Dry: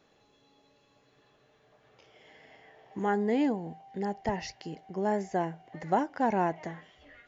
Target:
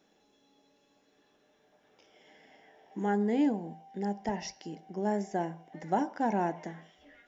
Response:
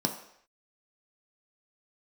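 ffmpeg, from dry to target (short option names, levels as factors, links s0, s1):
-filter_complex "[0:a]highshelf=f=3700:g=7,asplit=2[s0][s1];[1:a]atrim=start_sample=2205,afade=t=out:st=0.23:d=0.01,atrim=end_sample=10584[s2];[s1][s2]afir=irnorm=-1:irlink=0,volume=0.224[s3];[s0][s3]amix=inputs=2:normalize=0,volume=0.447"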